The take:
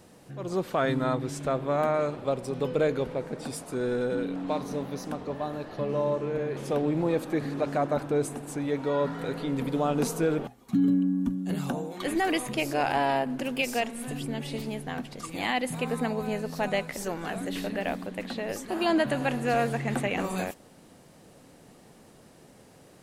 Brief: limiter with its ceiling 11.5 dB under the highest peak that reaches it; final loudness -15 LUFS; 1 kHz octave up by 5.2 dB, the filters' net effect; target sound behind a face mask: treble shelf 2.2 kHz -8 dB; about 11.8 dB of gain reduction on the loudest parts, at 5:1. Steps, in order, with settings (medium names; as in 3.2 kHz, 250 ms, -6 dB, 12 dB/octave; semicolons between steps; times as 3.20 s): peaking EQ 1 kHz +9 dB; compression 5:1, threshold -31 dBFS; peak limiter -29.5 dBFS; treble shelf 2.2 kHz -8 dB; trim +24.5 dB